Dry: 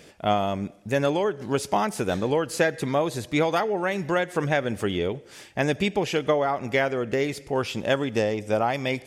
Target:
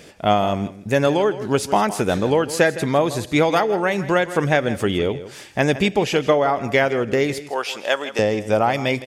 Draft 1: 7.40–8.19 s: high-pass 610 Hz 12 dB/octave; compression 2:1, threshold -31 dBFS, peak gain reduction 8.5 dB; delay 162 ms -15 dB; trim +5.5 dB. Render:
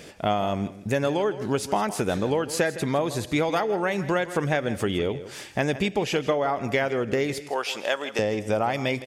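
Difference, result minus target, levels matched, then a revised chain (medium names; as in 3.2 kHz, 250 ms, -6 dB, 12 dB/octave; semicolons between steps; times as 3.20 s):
compression: peak gain reduction +8.5 dB
7.40–8.19 s: high-pass 610 Hz 12 dB/octave; delay 162 ms -15 dB; trim +5.5 dB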